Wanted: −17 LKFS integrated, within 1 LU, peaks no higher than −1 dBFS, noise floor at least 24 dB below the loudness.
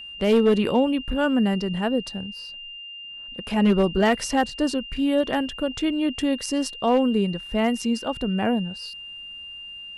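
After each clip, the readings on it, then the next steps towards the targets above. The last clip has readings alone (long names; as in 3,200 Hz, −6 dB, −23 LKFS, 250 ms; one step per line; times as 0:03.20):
share of clipped samples 0.4%; peaks flattened at −12.0 dBFS; interfering tone 2,800 Hz; level of the tone −36 dBFS; integrated loudness −23.0 LKFS; sample peak −12.0 dBFS; target loudness −17.0 LKFS
→ clipped peaks rebuilt −12 dBFS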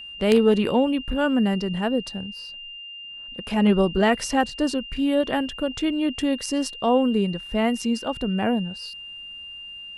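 share of clipped samples 0.0%; interfering tone 2,800 Hz; level of the tone −36 dBFS
→ notch filter 2,800 Hz, Q 30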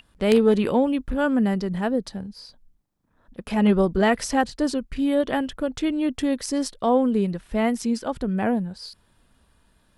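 interfering tone none found; integrated loudness −23.0 LKFS; sample peak −3.0 dBFS; target loudness −17.0 LKFS
→ level +6 dB
brickwall limiter −1 dBFS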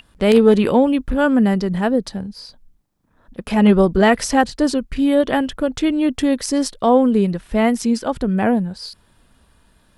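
integrated loudness −17.0 LKFS; sample peak −1.0 dBFS; background noise floor −57 dBFS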